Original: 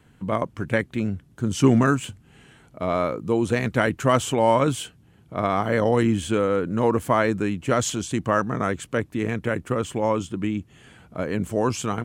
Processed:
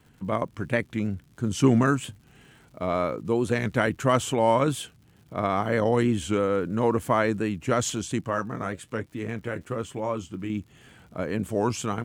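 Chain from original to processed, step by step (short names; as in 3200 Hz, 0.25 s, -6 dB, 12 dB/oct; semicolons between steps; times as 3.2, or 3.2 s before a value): 8.2–10.5 flange 1.1 Hz, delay 6 ms, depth 6 ms, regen -54%; crackle 170/s -46 dBFS; record warp 45 rpm, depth 100 cents; gain -2.5 dB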